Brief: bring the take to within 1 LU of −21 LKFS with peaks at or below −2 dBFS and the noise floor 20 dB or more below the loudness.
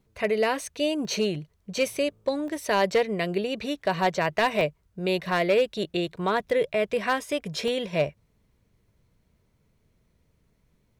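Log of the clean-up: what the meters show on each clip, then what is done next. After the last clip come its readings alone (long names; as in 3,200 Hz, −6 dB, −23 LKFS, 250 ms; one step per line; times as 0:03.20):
share of clipped samples 0.3%; peaks flattened at −15.0 dBFS; number of dropouts 5; longest dropout 1.1 ms; integrated loudness −26.5 LKFS; sample peak −15.0 dBFS; target loudness −21.0 LKFS
→ clipped peaks rebuilt −15 dBFS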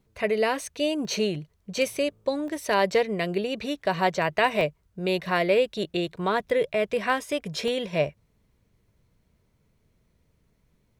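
share of clipped samples 0.0%; number of dropouts 5; longest dropout 1.1 ms
→ repair the gap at 0:01.05/0:02.48/0:04.61/0:05.26/0:07.68, 1.1 ms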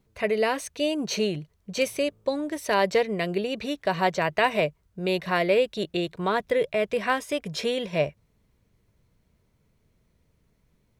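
number of dropouts 0; integrated loudness −26.5 LKFS; sample peak −8.5 dBFS; target loudness −21.0 LKFS
→ level +5.5 dB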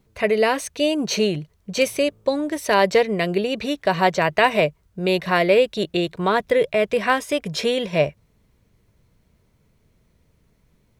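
integrated loudness −21.0 LKFS; sample peak −3.0 dBFS; background noise floor −63 dBFS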